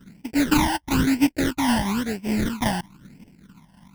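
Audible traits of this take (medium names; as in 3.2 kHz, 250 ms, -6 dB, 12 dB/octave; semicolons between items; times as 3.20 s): aliases and images of a low sample rate 1.2 kHz, jitter 20%; phasing stages 12, 1 Hz, lowest notch 400–1300 Hz; random flutter of the level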